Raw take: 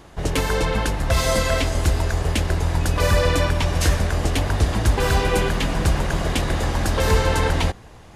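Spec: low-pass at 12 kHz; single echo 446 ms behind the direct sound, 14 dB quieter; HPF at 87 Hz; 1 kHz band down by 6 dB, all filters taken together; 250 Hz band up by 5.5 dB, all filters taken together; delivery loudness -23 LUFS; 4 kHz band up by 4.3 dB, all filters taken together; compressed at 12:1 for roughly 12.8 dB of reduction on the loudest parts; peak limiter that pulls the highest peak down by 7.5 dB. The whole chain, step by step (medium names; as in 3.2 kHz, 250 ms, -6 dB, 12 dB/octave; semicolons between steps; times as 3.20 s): high-pass 87 Hz; low-pass 12 kHz; peaking EQ 250 Hz +8 dB; peaking EQ 1 kHz -8.5 dB; peaking EQ 4 kHz +6 dB; compression 12:1, threshold -28 dBFS; peak limiter -24 dBFS; delay 446 ms -14 dB; trim +10.5 dB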